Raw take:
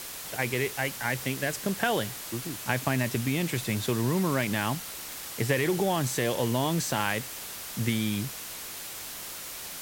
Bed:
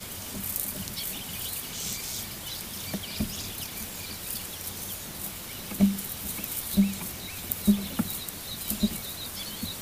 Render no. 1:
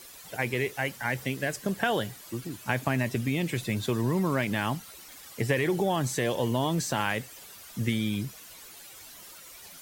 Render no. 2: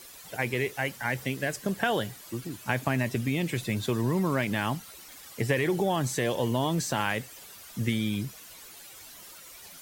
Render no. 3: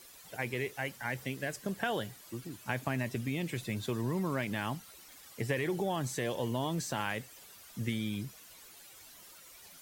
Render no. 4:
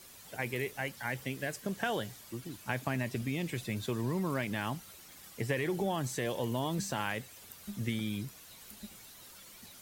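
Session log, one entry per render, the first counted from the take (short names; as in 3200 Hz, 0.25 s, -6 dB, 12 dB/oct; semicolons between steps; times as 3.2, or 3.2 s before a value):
denoiser 12 dB, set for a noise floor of -40 dBFS
nothing audible
gain -6.5 dB
add bed -22.5 dB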